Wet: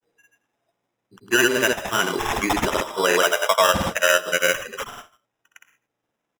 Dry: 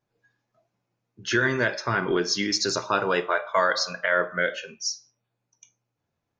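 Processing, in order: HPF 250 Hz 12 dB/oct; sample-and-hold 10×; grains, pitch spread up and down by 0 st; echo 86 ms -21.5 dB; gain +6 dB

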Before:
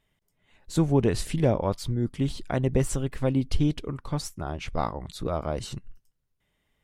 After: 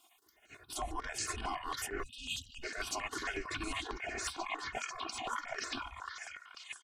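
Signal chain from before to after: gliding pitch shift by -10.5 st starting unshifted; spectral gate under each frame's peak -20 dB weak; comb 2.8 ms, depth 85%; reverse; compressor 6:1, threshold -50 dBFS, peak gain reduction 17.5 dB; reverse; delay with a stepping band-pass 0.492 s, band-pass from 1300 Hz, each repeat 0.7 oct, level 0 dB; spectral delete 2.03–2.63, 260–2500 Hz; step phaser 11 Hz 470–3500 Hz; gain +16 dB

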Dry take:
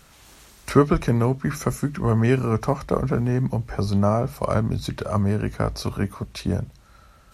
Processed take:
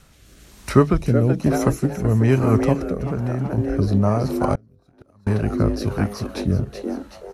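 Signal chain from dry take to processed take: 0.97–1.54 bell 1600 Hz -11.5 dB 0.95 oct; frequency-shifting echo 0.378 s, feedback 40%, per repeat +150 Hz, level -6 dB; rotary speaker horn 1.1 Hz; 2.83–3.58 compressor, threshold -24 dBFS, peak gain reduction 7 dB; low shelf 230 Hz +5 dB; 4.55–5.27 flipped gate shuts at -16 dBFS, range -34 dB; gain +1.5 dB

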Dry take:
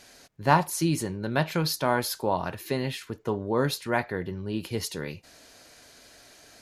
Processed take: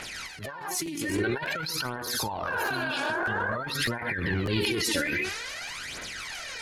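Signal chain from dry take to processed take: bin magnitudes rounded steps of 30 dB; on a send at -10 dB: reverb, pre-delay 3 ms; on the sum: spectral repair 2.55–3.53, 280–2200 Hz before; phaser 0.5 Hz, delay 3.6 ms, feedback 67%; bell 2000 Hz +12.5 dB 1.7 oct; notch 1700 Hz, Q 21; negative-ratio compressor -31 dBFS, ratio -1; transient shaper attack -11 dB, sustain +5 dB; crackling interface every 0.60 s, samples 512, repeat, from 0.85

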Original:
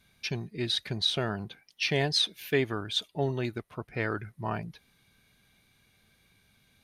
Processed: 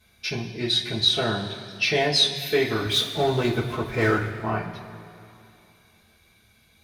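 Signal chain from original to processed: 2.86–4.29 power-law curve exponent 0.7; two-slope reverb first 0.22 s, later 2.7 s, from -18 dB, DRR -5.5 dB

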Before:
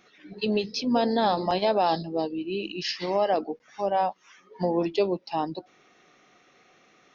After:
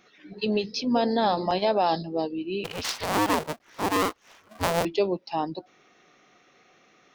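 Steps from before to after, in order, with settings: 2.64–4.85 cycle switcher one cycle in 2, inverted

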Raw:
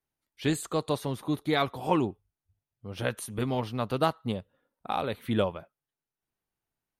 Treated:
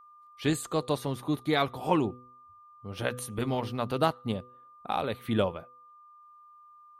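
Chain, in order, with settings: de-hum 124.4 Hz, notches 4; whine 1200 Hz -52 dBFS

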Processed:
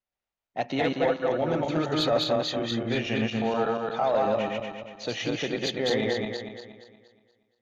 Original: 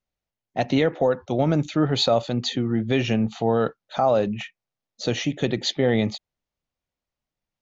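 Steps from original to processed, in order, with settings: regenerating reverse delay 0.118 s, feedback 63%, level 0 dB; overdrive pedal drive 11 dB, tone 2800 Hz, clips at -3.5 dBFS; gain -8.5 dB

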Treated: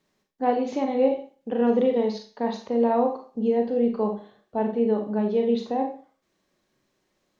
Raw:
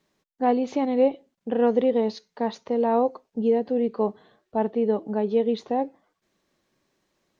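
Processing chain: Schroeder reverb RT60 0.38 s, combs from 30 ms, DRR 3 dB; gain -2 dB

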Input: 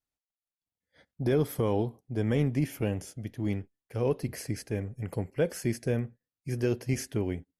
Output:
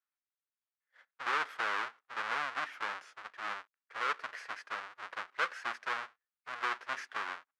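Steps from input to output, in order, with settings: half-waves squared off; ladder band-pass 1600 Hz, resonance 40%; gain +8 dB

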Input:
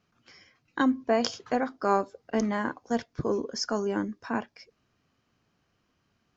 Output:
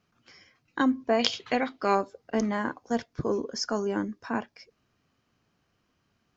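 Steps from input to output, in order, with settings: 1.19–1.95 band shelf 2900 Hz +11.5 dB 1.3 oct

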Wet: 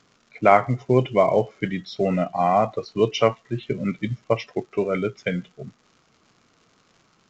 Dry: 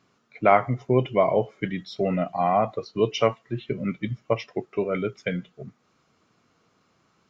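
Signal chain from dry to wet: crackle 180/s -46 dBFS; gain +2.5 dB; µ-law 128 kbps 16000 Hz

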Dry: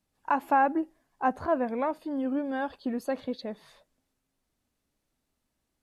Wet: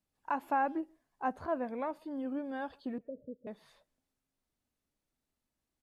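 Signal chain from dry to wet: 2.98–3.47 rippled Chebyshev low-pass 620 Hz, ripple 6 dB; speakerphone echo 0.13 s, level -28 dB; gain -7.5 dB

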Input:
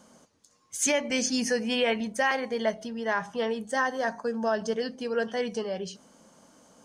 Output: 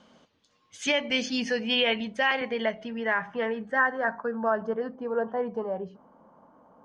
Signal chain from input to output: low-pass sweep 3300 Hz -> 1000 Hz, 1.99–5.21; 2.41–3.7 three-band squash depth 40%; gain -1.5 dB

